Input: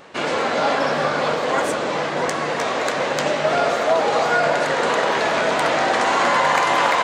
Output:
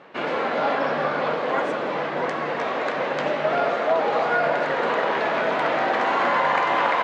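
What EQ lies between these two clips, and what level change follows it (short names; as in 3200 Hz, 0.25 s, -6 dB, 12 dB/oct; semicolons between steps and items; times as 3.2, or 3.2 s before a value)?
BPF 140–2800 Hz; -3.0 dB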